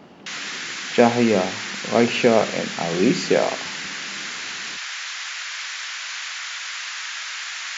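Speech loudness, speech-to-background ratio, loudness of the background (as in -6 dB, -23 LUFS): -20.5 LUFS, 8.0 dB, -28.5 LUFS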